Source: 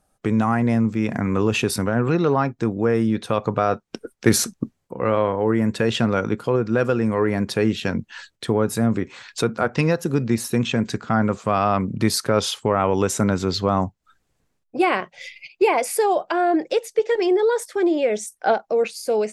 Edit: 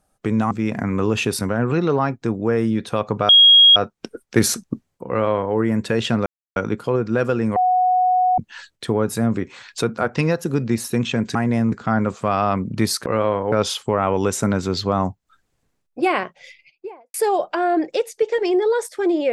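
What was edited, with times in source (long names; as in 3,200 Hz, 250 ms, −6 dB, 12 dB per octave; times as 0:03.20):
0:00.51–0:00.88: move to 0:10.95
0:03.66: insert tone 3,280 Hz −6.5 dBFS 0.47 s
0:04.99–0:05.45: duplicate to 0:12.29
0:06.16: splice in silence 0.30 s
0:07.16–0:07.98: beep over 735 Hz −13.5 dBFS
0:14.89–0:15.91: fade out and dull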